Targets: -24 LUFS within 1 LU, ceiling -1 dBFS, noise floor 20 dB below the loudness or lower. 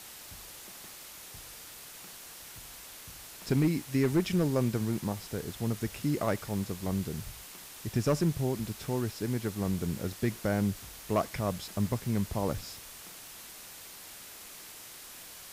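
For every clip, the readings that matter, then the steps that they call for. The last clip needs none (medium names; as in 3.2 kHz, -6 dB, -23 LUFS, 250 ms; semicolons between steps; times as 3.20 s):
clipped samples 0.3%; clipping level -19.5 dBFS; noise floor -48 dBFS; noise floor target -52 dBFS; loudness -32.0 LUFS; peak level -19.5 dBFS; loudness target -24.0 LUFS
-> clip repair -19.5 dBFS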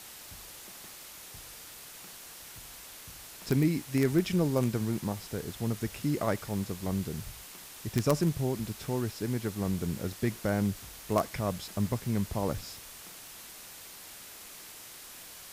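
clipped samples 0.0%; noise floor -48 dBFS; noise floor target -52 dBFS
-> noise print and reduce 6 dB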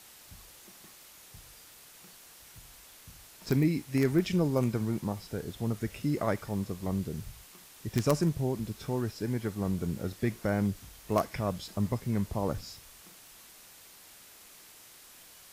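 noise floor -54 dBFS; loudness -31.5 LUFS; peak level -10.5 dBFS; loudness target -24.0 LUFS
-> trim +7.5 dB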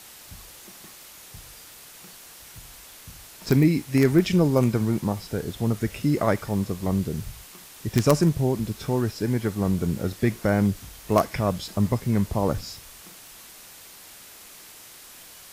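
loudness -24.0 LUFS; peak level -3.0 dBFS; noise floor -46 dBFS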